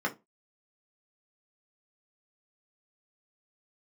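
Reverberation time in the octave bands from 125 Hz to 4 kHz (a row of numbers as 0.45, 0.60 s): 0.25, 0.25, 0.25, 0.20, 0.15, 0.15 s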